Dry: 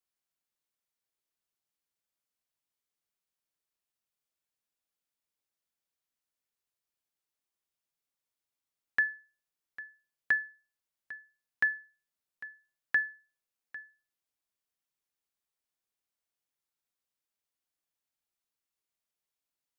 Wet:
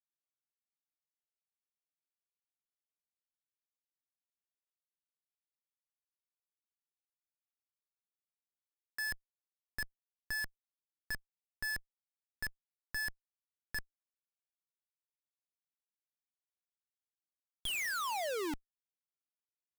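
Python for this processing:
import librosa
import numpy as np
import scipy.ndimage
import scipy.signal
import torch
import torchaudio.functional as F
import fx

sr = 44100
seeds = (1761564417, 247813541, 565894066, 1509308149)

y = fx.spec_paint(x, sr, seeds[0], shape='fall', start_s=17.65, length_s=0.89, low_hz=280.0, high_hz=3400.0, level_db=-32.0)
y = fx.hum_notches(y, sr, base_hz=60, count=4)
y = fx.schmitt(y, sr, flips_db=-42.0)
y = y * librosa.db_to_amplitude(5.0)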